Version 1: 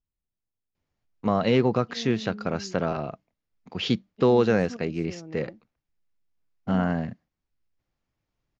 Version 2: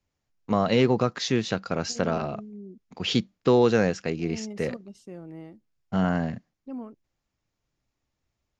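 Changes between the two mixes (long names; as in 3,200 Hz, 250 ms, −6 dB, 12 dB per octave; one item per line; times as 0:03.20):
first voice: entry −0.75 s
master: remove high-frequency loss of the air 100 metres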